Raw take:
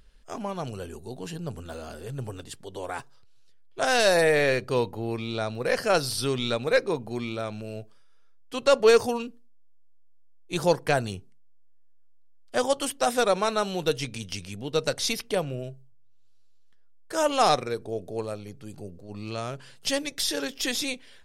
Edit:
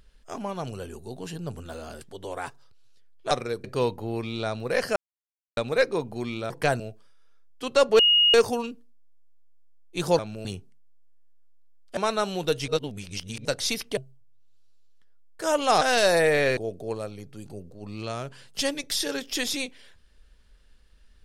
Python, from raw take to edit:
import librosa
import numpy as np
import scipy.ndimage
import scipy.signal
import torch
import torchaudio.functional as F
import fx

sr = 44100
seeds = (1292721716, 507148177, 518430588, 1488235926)

y = fx.edit(x, sr, fx.cut(start_s=2.01, length_s=0.52),
    fx.swap(start_s=3.83, length_s=0.76, other_s=17.52, other_length_s=0.33),
    fx.silence(start_s=5.91, length_s=0.61),
    fx.swap(start_s=7.45, length_s=0.26, other_s=10.75, other_length_s=0.3),
    fx.insert_tone(at_s=8.9, length_s=0.35, hz=2870.0, db=-15.5),
    fx.cut(start_s=12.57, length_s=0.79),
    fx.reverse_span(start_s=14.07, length_s=0.77),
    fx.cut(start_s=15.36, length_s=0.32), tone=tone)